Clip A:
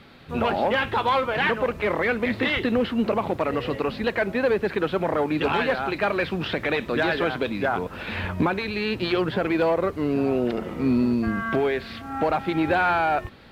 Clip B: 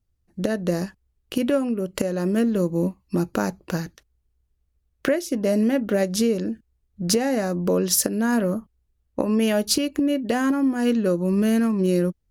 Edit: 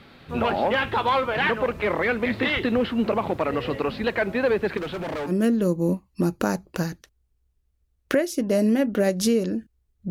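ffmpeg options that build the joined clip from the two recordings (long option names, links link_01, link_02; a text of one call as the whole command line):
ffmpeg -i cue0.wav -i cue1.wav -filter_complex "[0:a]asettb=1/sr,asplit=3[link_01][link_02][link_03];[link_01]atrim=end=4.774[link_04];[link_02]atrim=start=4.77:end=5.32,asetpts=PTS-STARTPTS,afade=type=in:duration=0.004:curve=qsin,afade=type=out:start_time=0.546:duration=0.004:curve=qsin,asoftclip=type=hard:threshold=-27dB[link_05];[link_03]atrim=start=5.316[link_06];[link_04][link_05]acrossfade=duration=0.004:curve1=hsin:curve2=qsin[link_07];[link_07][link_06]acrossfade=duration=0.004:curve1=qsin:curve2=hsin,apad=whole_dur=10.1,atrim=end=10.1,atrim=end=5.32,asetpts=PTS-STARTPTS[link_08];[1:a]atrim=start=2.2:end=7.04,asetpts=PTS-STARTPTS[link_09];[link_08][link_09]acrossfade=duration=0.06:curve1=tri:curve2=tri" out.wav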